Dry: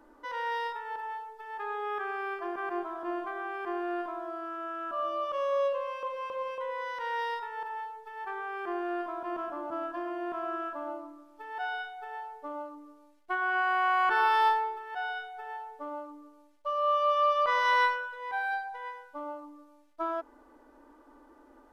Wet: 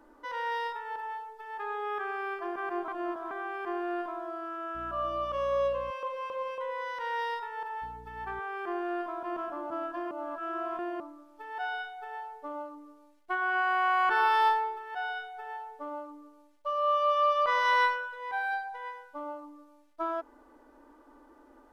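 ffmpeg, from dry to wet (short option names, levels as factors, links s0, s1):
-filter_complex "[0:a]asettb=1/sr,asplit=3[s0][s1][s2];[s0]atrim=end=4.754[s3];[s1]atrim=start=4.75:end=5.91,asetpts=PTS-STARTPTS,afade=t=in:d=0.004:c=qsin,afade=t=out:st=1.156:d=0.004:c=qsin,aeval=exprs='val(0)+0.00398*(sin(2*PI*60*n/s)+sin(2*PI*2*60*n/s)/2+sin(2*PI*3*60*n/s)/3+sin(2*PI*4*60*n/s)/4+sin(2*PI*5*60*n/s)/5)':c=same[s4];[s2]atrim=start=5.906[s5];[s3][s4]acrossfade=d=0.004:c1=hsin:c2=qsin[s6];[s6][s5]acrossfade=d=0.004:c1=qsin:c2=hsin,asettb=1/sr,asplit=3[s7][s8][s9];[s7]atrim=end=7.824[s10];[s8]atrim=start=7.82:end=8.4,asetpts=PTS-STARTPTS,afade=t=in:d=0.004:c=qsin,afade=t=out:st=0.576:d=0.004:c=qsin,aeval=exprs='val(0)+0.00355*(sin(2*PI*60*n/s)+sin(2*PI*2*60*n/s)/2+sin(2*PI*3*60*n/s)/3+sin(2*PI*4*60*n/s)/4+sin(2*PI*5*60*n/s)/5)':c=same[s11];[s9]atrim=start=8.396[s12];[s10][s11]acrossfade=d=0.004:c1=hsin:c2=qsin[s13];[s13][s12]acrossfade=d=0.004:c1=qsin:c2=hsin,asplit=5[s14][s15][s16][s17][s18];[s14]atrim=end=2.882[s19];[s15]atrim=start=2.878:end=3.312,asetpts=PTS-STARTPTS,areverse[s20];[s16]atrim=start=3.308:end=10.112[s21];[s17]atrim=start=10.108:end=11.002,asetpts=PTS-STARTPTS,areverse[s22];[s18]atrim=start=10.998[s23];[s19][s20]acrossfade=d=0.004:c1=hsin:c2=hsin[s24];[s24][s21]acrossfade=d=0.004:c1=hsin:c2=hsin[s25];[s25][s22]acrossfade=d=0.004:c1=hsin:c2=hsin[s26];[s26][s23]acrossfade=d=0.004:c1=hsin:c2=hsin"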